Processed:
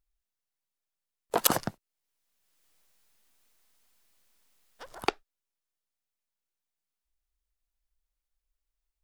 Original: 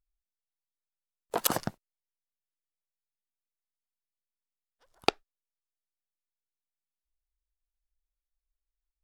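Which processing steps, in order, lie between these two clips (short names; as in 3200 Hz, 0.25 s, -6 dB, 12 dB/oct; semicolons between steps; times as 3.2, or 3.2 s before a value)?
1.55–5.09 three-band squash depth 70%; gain +3.5 dB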